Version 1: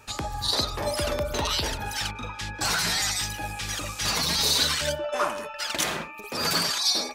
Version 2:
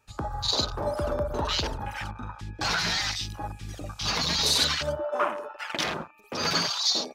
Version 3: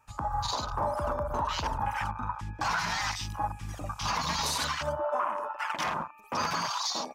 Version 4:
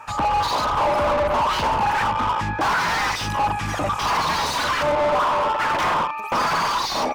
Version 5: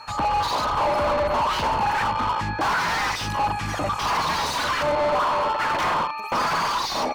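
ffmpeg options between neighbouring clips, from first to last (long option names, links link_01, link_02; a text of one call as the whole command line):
ffmpeg -i in.wav -af "afwtdn=0.0282" out.wav
ffmpeg -i in.wav -af "equalizer=frequency=400:width_type=o:width=0.67:gain=-8,equalizer=frequency=1000:width_type=o:width=0.67:gain=11,equalizer=frequency=4000:width_type=o:width=0.67:gain=-8,alimiter=limit=-20dB:level=0:latency=1:release=185" out.wav
ffmpeg -i in.wav -filter_complex "[0:a]asplit=2[link_01][link_02];[link_02]highpass=frequency=720:poles=1,volume=29dB,asoftclip=type=tanh:threshold=-19.5dB[link_03];[link_01][link_03]amix=inputs=2:normalize=0,lowpass=frequency=1600:poles=1,volume=-6dB,volume=6.5dB" out.wav
ffmpeg -i in.wav -af "aeval=exprs='val(0)+0.00708*sin(2*PI*4300*n/s)':channel_layout=same,volume=-2dB" out.wav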